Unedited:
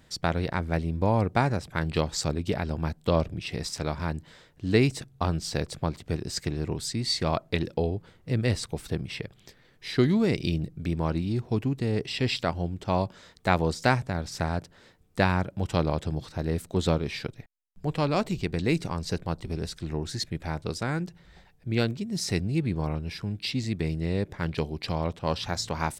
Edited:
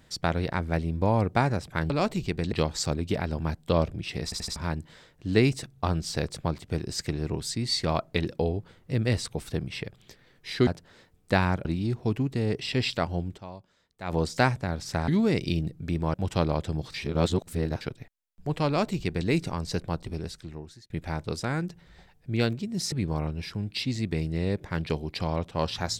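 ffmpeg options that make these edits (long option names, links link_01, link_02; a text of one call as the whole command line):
ffmpeg -i in.wav -filter_complex "[0:a]asplit=17[link_01][link_02][link_03][link_04][link_05][link_06][link_07][link_08][link_09][link_10][link_11][link_12][link_13][link_14][link_15][link_16][link_17];[link_01]atrim=end=1.902[link_18];[link_02]atrim=start=18.048:end=18.672[link_19];[link_03]atrim=start=1.898:end=3.702[link_20];[link_04]atrim=start=3.618:end=3.702[link_21];[link_05]atrim=start=3.618:end=3.702[link_22];[link_06]atrim=start=3.618:end=3.702[link_23];[link_07]atrim=start=3.938:end=10.052[link_24];[link_08]atrim=start=14.538:end=15.522[link_25];[link_09]atrim=start=11.108:end=13.16,asetpts=PTS-STARTPTS,afade=type=out:start_time=1.692:duration=0.36:curve=exp:silence=0.141254[link_26];[link_10]atrim=start=13.16:end=13.23,asetpts=PTS-STARTPTS,volume=-17dB[link_27];[link_11]atrim=start=13.23:end=14.542,asetpts=PTS-STARTPTS,afade=type=in:duration=0.36:curve=exp:silence=0.141254[link_28];[link_12]atrim=start=10.048:end=11.112[link_29];[link_13]atrim=start=15.518:end=16.322[link_30];[link_14]atrim=start=16.318:end=17.192,asetpts=PTS-STARTPTS,areverse[link_31];[link_15]atrim=start=17.188:end=20.28,asetpts=PTS-STARTPTS,afade=type=out:start_time=2.182:duration=0.91[link_32];[link_16]atrim=start=20.28:end=22.302,asetpts=PTS-STARTPTS,afade=type=in:duration=0.004:curve=hsin[link_33];[link_17]atrim=start=22.598[link_34];[link_18][link_19]acrossfade=duration=0.004:curve1=hsin:curve2=hsin[link_35];[link_35][link_20]acrossfade=duration=0.004:curve1=hsin:curve2=hsin[link_36];[link_36][link_21]acrossfade=duration=0.004:curve1=hsin:curve2=hsin[link_37];[link_37][link_22]acrossfade=duration=0.004:curve1=hsin:curve2=hsin[link_38];[link_38][link_23]acrossfade=duration=0.004:curve1=hsin:curve2=hsin[link_39];[link_39][link_24]acrossfade=duration=0.004:curve1=hsin:curve2=hsin[link_40];[link_40][link_25]acrossfade=duration=0.004:curve1=hsin:curve2=hsin[link_41];[link_26][link_27][link_28]concat=n=3:v=0:a=1[link_42];[link_41][link_42]acrossfade=duration=0.004:curve1=hsin:curve2=hsin[link_43];[link_43][link_29]acrossfade=duration=0.004:curve1=hsin:curve2=hsin[link_44];[link_44][link_30]acrossfade=duration=0.004:curve1=hsin:curve2=hsin[link_45];[link_45][link_31]acrossfade=duration=0.004:curve1=hsin:curve2=hsin[link_46];[link_32][link_33]concat=n=2:v=0:a=1[link_47];[link_46][link_47]acrossfade=duration=0.004:curve1=hsin:curve2=hsin[link_48];[link_48][link_34]acrossfade=duration=0.004:curve1=hsin:curve2=hsin" out.wav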